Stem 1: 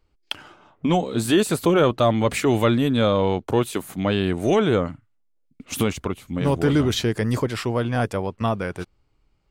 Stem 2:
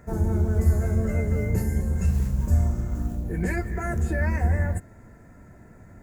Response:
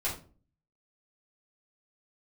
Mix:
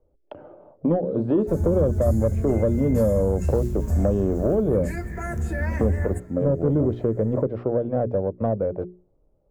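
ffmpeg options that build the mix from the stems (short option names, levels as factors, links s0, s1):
-filter_complex "[0:a]lowpass=f=560:t=q:w=5.1,volume=1.06[s0];[1:a]adelay=1400,volume=0.891[s1];[s0][s1]amix=inputs=2:normalize=0,bandreject=f=60:t=h:w=6,bandreject=f=120:t=h:w=6,bandreject=f=180:t=h:w=6,bandreject=f=240:t=h:w=6,bandreject=f=300:t=h:w=6,bandreject=f=360:t=h:w=6,bandreject=f=420:t=h:w=6,acrossover=split=250|3000[s2][s3][s4];[s3]acompressor=threshold=0.0891:ratio=10[s5];[s2][s5][s4]amix=inputs=3:normalize=0,asoftclip=type=tanh:threshold=0.316"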